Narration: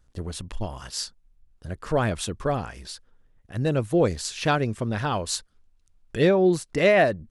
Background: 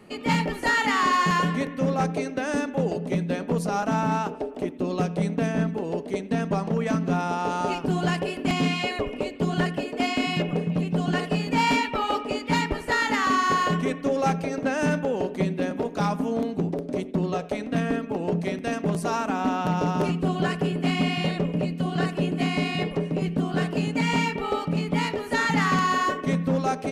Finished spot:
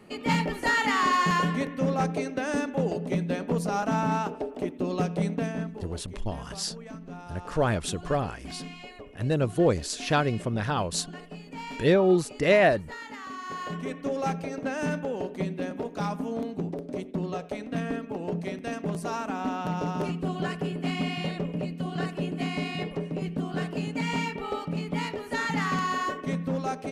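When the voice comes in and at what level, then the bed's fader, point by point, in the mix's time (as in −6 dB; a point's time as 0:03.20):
5.65 s, −1.5 dB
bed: 0:05.29 −2 dB
0:06.10 −17 dB
0:13.36 −17 dB
0:14.00 −5.5 dB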